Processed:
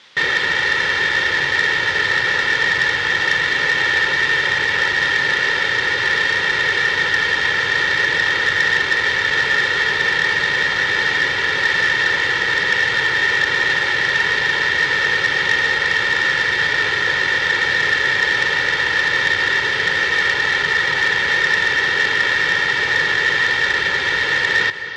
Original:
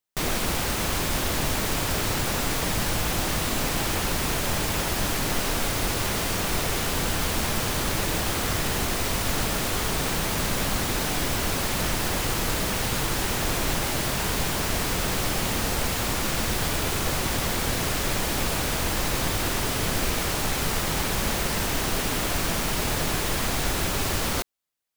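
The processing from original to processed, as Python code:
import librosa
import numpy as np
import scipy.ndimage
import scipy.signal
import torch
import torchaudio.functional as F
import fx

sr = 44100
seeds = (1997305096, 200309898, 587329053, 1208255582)

p1 = fx.tape_stop_end(x, sr, length_s=1.01)
p2 = fx.peak_eq(p1, sr, hz=1800.0, db=14.5, octaves=0.31)
p3 = p2 + 0.76 * np.pad(p2, (int(2.2 * sr / 1000.0), 0))[:len(p2)]
p4 = fx.quant_dither(p3, sr, seeds[0], bits=6, dither='triangular')
p5 = p3 + (p4 * librosa.db_to_amplitude(-7.5))
p6 = fx.cabinet(p5, sr, low_hz=180.0, low_slope=12, high_hz=4800.0, hz=(320.0, 680.0, 1900.0, 3400.0), db=(-6, -7, 6, 7))
p7 = p6 + fx.echo_single(p6, sr, ms=263, db=-12.5, dry=0)
y = fx.transformer_sat(p7, sr, knee_hz=2200.0)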